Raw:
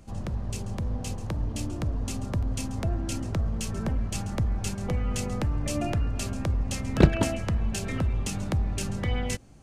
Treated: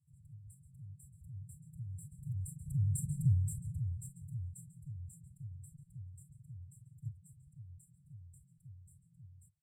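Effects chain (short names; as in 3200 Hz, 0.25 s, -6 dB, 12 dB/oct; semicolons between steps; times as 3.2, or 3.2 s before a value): Doppler pass-by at 3.12, 15 m/s, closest 2.8 m; HPF 47 Hz 24 dB/oct; formant-preserving pitch shift +11 st; brick-wall FIR band-stop 160–7300 Hz; gain +4.5 dB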